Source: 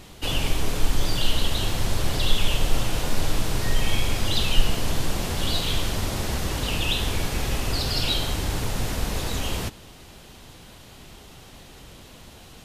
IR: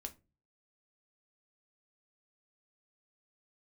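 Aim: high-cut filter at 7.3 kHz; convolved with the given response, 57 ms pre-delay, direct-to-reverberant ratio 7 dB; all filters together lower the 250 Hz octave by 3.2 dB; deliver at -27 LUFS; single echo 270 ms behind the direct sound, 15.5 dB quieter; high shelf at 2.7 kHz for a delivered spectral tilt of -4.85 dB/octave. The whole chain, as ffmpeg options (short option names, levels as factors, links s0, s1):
-filter_complex "[0:a]lowpass=7300,equalizer=f=250:t=o:g=-4.5,highshelf=f=2700:g=-7,aecho=1:1:270:0.168,asplit=2[s0][s1];[1:a]atrim=start_sample=2205,adelay=57[s2];[s1][s2]afir=irnorm=-1:irlink=0,volume=0.708[s3];[s0][s3]amix=inputs=2:normalize=0,volume=1.06"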